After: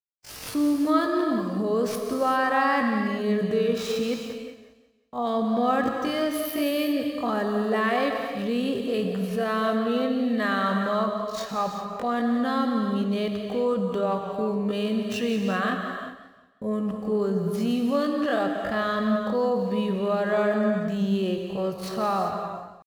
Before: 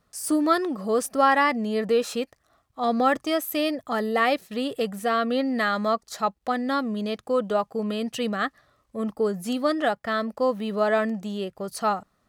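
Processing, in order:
running median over 5 samples
noise gate −48 dBFS, range −52 dB
low-shelf EQ 190 Hz +5 dB
in parallel at −2.5 dB: compressor whose output falls as the input rises −28 dBFS, ratio −0.5
on the sum: floating-point word with a short mantissa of 8 bits
tempo change 0.56×
reverb whose tail is shaped and stops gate 410 ms flat, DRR 3.5 dB
wrong playback speed 25 fps video run at 24 fps
feedback echo with a swinging delay time 179 ms, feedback 36%, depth 81 cents, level −13 dB
level −5 dB

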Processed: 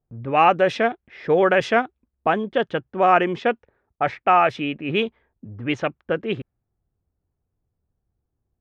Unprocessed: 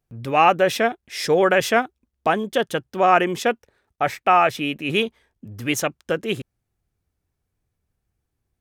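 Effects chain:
Bessel low-pass filter 3,100 Hz, order 2
low-pass that shuts in the quiet parts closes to 1,000 Hz, open at −13.5 dBFS

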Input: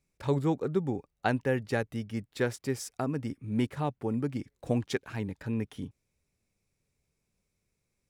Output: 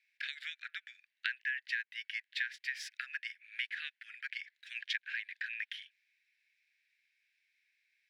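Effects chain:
Butterworth high-pass 1,600 Hz 96 dB per octave
high-frequency loss of the air 360 metres
downward compressor 8 to 1, threshold −51 dBFS, peak gain reduction 13.5 dB
level +17.5 dB

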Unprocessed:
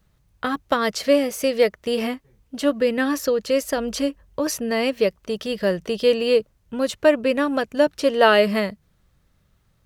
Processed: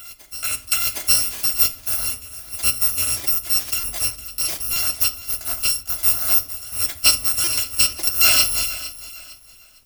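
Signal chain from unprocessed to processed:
samples in bit-reversed order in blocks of 256 samples
on a send: backwards echo 762 ms −17 dB
on the sum: rectangular room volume 530 cubic metres, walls furnished, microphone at 0.73 metres
buffer that repeats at 0:01.72/0:03.80/0:04.73/0:06.35/0:07.44/0:08.04, samples 128, times 10
feedback echo at a low word length 457 ms, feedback 35%, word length 7 bits, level −15 dB

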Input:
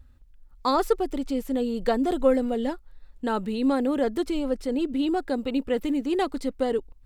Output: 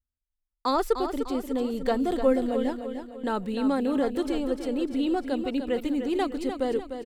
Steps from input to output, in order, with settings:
noise gate −38 dBFS, range −34 dB
on a send: repeating echo 300 ms, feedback 45%, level −8.5 dB
on the sum: level −2 dB

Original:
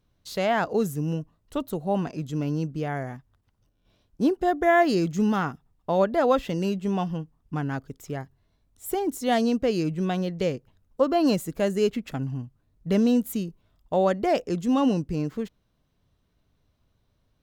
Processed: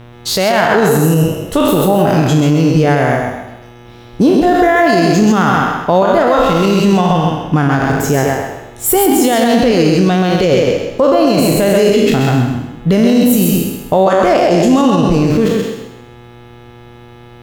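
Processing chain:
peak hold with a decay on every bin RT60 0.84 s
downward compressor 3 to 1, threshold −26 dBFS, peak gain reduction 9.5 dB
hum with harmonics 120 Hz, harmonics 32, −57 dBFS −6 dB per octave
feedback echo with a high-pass in the loop 131 ms, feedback 31%, high-pass 230 Hz, level −3 dB
boost into a limiter +21 dB
level −1 dB

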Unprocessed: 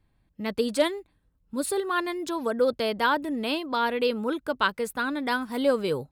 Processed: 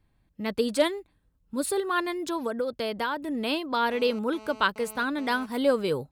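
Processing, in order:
0:02.36–0:03.35: downward compressor 6 to 1, threshold −26 dBFS, peak gain reduction 8.5 dB
0:03.91–0:05.46: phone interference −46 dBFS

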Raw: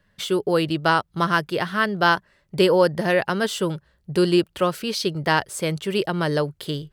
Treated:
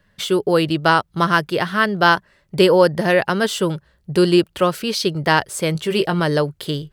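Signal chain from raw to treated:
0:05.73–0:06.20: double-tracking delay 18 ms −7.5 dB
level +4 dB

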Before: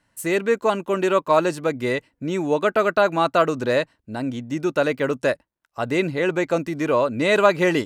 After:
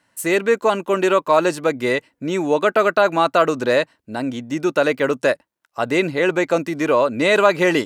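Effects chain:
high-pass filter 240 Hz 6 dB per octave
in parallel at −0.5 dB: brickwall limiter −12.5 dBFS, peak gain reduction 9.5 dB
on the sum: level −1 dB

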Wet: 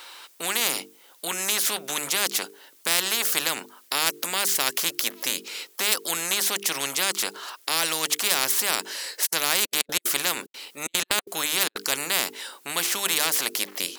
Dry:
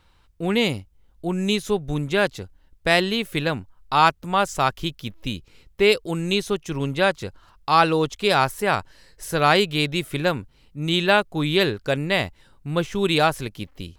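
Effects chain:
high-pass filter 330 Hz 24 dB per octave
spectral tilt +3 dB per octave
mains-hum notches 50/100/150/200/250/300/350/400/450 Hz
0:09.25–0:11.89: gate pattern "x.x.xxxxx.xxxx." 185 BPM −60 dB
every bin compressed towards the loudest bin 4 to 1
level −2.5 dB

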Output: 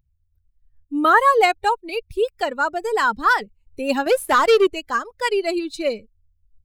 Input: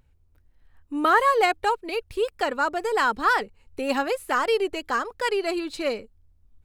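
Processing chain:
spectral dynamics exaggerated over time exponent 1.5
0:04.06–0:04.67: leveller curve on the samples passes 2
level +6 dB

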